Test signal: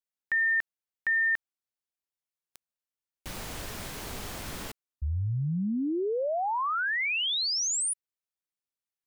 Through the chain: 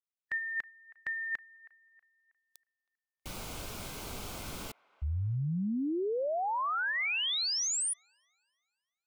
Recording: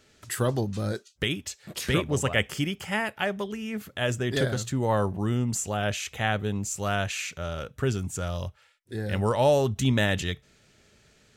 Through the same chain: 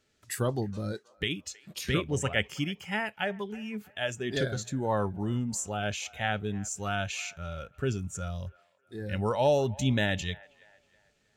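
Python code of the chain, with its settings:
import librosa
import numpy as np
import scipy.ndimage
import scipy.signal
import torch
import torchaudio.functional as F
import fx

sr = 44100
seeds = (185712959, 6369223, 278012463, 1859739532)

y = fx.noise_reduce_blind(x, sr, reduce_db=9)
y = fx.echo_wet_bandpass(y, sr, ms=320, feedback_pct=38, hz=1200.0, wet_db=-20.5)
y = y * librosa.db_to_amplitude(-3.0)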